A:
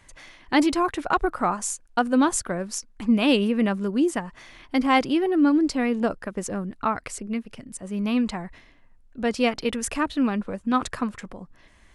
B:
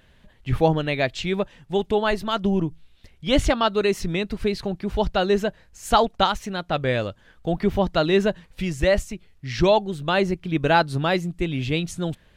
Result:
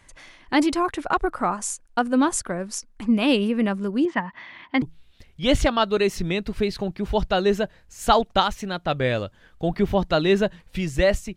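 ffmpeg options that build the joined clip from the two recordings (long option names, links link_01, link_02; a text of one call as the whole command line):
ffmpeg -i cue0.wav -i cue1.wav -filter_complex "[0:a]asettb=1/sr,asplit=3[link_01][link_02][link_03];[link_01]atrim=end=4.054[link_04];[link_02]atrim=start=4.05:end=4.82,asetpts=PTS-STARTPTS,afade=type=in:duration=0.004:curve=qsin,afade=type=out:start_time=0.766:duration=0.004:curve=qsin,highpass=120,equalizer=frequency=200:width_type=q:width=4:gain=4,equalizer=frequency=440:width_type=q:width=4:gain=-7,equalizer=frequency=970:width_type=q:width=4:gain=9,equalizer=frequency=1900:width_type=q:width=4:gain=9,equalizer=frequency=3200:width_type=q:width=4:gain=3,lowpass=frequency=4100:width=0.5412,lowpass=frequency=4100:width=1.3066[link_05];[link_03]atrim=start=4.816[link_06];[link_04][link_05]acrossfade=duration=0.004:curve1=hsin:curve2=qsin[link_07];[link_07][link_06]acrossfade=duration=0.004:curve1=qsin:curve2=hsin,apad=whole_dur=11.36,atrim=end=11.36,atrim=end=4.822[link_08];[1:a]atrim=start=2.658:end=9.2[link_09];[link_08][link_09]acrossfade=duration=0.004:curve1=hsin:curve2=hsin" out.wav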